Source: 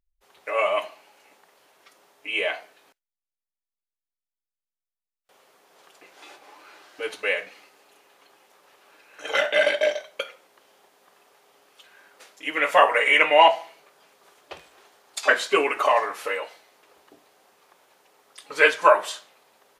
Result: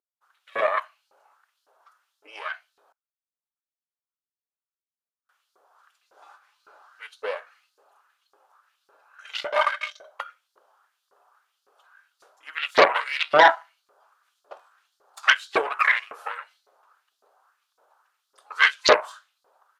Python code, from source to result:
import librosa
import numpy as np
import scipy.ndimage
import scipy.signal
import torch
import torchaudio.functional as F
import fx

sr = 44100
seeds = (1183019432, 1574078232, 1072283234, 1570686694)

y = fx.high_shelf_res(x, sr, hz=1700.0, db=-6.5, q=3.0)
y = fx.cheby_harmonics(y, sr, harmonics=(6,), levels_db=(-6,), full_scale_db=0.5)
y = fx.filter_lfo_highpass(y, sr, shape='saw_up', hz=1.8, low_hz=390.0, high_hz=4900.0, q=2.3)
y = y * 10.0 ** (-8.0 / 20.0)